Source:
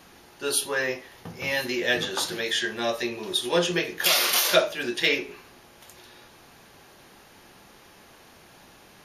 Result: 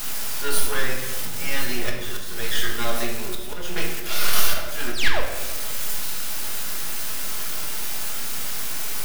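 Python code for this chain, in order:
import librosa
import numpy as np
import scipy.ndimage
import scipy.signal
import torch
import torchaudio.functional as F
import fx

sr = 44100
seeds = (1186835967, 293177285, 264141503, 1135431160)

y = x + 0.5 * 10.0 ** (-21.0 / 20.0) * np.diff(np.sign(x), prepend=np.sign(x[:1]))
y = fx.spec_paint(y, sr, seeds[0], shape='fall', start_s=4.92, length_s=0.29, low_hz=450.0, high_hz=6900.0, level_db=-13.0)
y = fx.peak_eq(y, sr, hz=1400.0, db=11.0, octaves=0.27)
y = np.maximum(y, 0.0)
y = fx.auto_swell(y, sr, attack_ms=268.0)
y = fx.doubler(y, sr, ms=17.0, db=-13)
y = fx.room_shoebox(y, sr, seeds[1], volume_m3=670.0, walls='mixed', distance_m=1.4)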